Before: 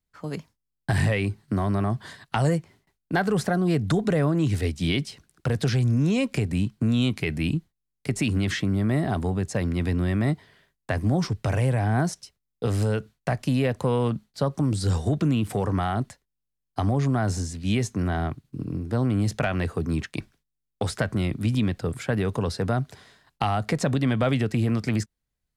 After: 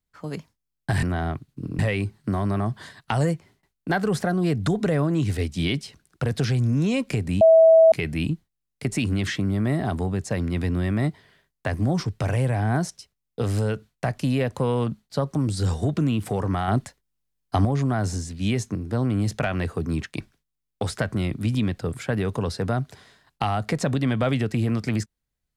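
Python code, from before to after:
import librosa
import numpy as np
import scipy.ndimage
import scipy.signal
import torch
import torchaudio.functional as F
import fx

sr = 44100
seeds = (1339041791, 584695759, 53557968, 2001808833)

y = fx.edit(x, sr, fx.bleep(start_s=6.65, length_s=0.51, hz=650.0, db=-9.5),
    fx.clip_gain(start_s=15.92, length_s=0.97, db=4.5),
    fx.move(start_s=17.99, length_s=0.76, to_s=1.03), tone=tone)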